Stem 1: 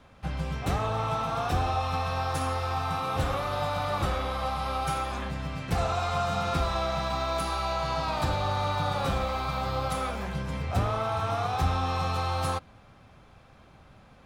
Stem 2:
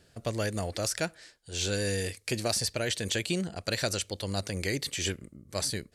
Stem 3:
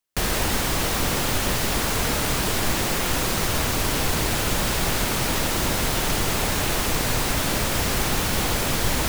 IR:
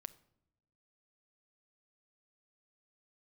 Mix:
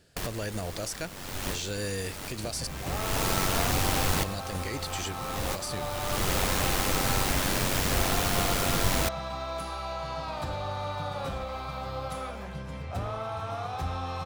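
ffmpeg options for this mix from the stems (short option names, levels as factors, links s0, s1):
-filter_complex "[0:a]equalizer=f=570:w=3.8:g=3.5,adelay=2200,volume=0.501[s0];[1:a]volume=0.944,asplit=3[s1][s2][s3];[s1]atrim=end=2.67,asetpts=PTS-STARTPTS,afade=t=out:st=2.666:d=0.004:c=hsin[s4];[s2]atrim=start=2.67:end=4.23,asetpts=PTS-STARTPTS,volume=0[s5];[s3]atrim=start=4.23,asetpts=PTS-STARTPTS,afade=t=in:d=0.004:c=hsin[s6];[s4][s5][s6]concat=n=3:v=0:a=1,asplit=2[s7][s8];[2:a]tremolo=f=94:d=0.571,volume=0.841[s9];[s8]apad=whole_len=400767[s10];[s9][s10]sidechaincompress=threshold=0.00562:ratio=6:attack=21:release=454[s11];[s0][s7]amix=inputs=2:normalize=0,alimiter=limit=0.0668:level=0:latency=1:release=97,volume=1[s12];[s11][s12]amix=inputs=2:normalize=0"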